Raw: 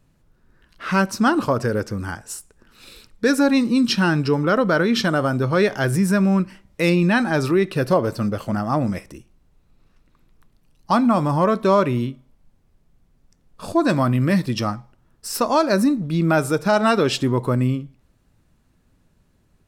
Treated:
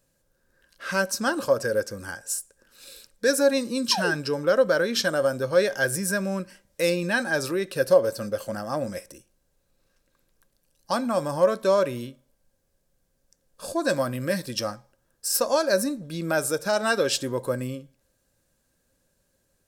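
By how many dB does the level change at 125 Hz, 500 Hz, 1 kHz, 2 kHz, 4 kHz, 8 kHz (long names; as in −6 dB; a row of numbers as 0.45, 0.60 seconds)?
−13.0, −1.5, −8.0, −2.5, −1.5, +4.0 decibels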